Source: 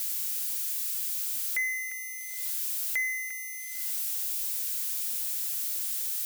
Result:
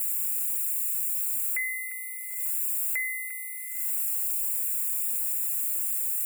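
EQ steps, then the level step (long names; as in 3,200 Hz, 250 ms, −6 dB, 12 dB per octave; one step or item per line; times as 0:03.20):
linear-phase brick-wall band-stop 2,800–6,900 Hz
bass and treble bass −12 dB, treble +5 dB
low-shelf EQ 110 Hz −9.5 dB
−1.5 dB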